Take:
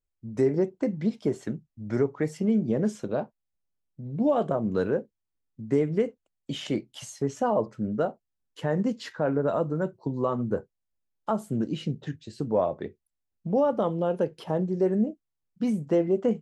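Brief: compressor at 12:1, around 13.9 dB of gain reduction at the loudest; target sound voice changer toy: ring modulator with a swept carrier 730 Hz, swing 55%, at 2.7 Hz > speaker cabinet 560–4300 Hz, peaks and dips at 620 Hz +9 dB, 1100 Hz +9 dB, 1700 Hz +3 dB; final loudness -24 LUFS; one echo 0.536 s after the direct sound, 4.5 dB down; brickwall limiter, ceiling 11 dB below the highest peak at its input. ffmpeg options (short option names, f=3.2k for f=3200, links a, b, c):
-af "acompressor=threshold=-33dB:ratio=12,alimiter=level_in=5.5dB:limit=-24dB:level=0:latency=1,volume=-5.5dB,aecho=1:1:536:0.596,aeval=exprs='val(0)*sin(2*PI*730*n/s+730*0.55/2.7*sin(2*PI*2.7*n/s))':c=same,highpass=560,equalizer=f=620:t=q:w=4:g=9,equalizer=f=1.1k:t=q:w=4:g=9,equalizer=f=1.7k:t=q:w=4:g=3,lowpass=f=4.3k:w=0.5412,lowpass=f=4.3k:w=1.3066,volume=15dB"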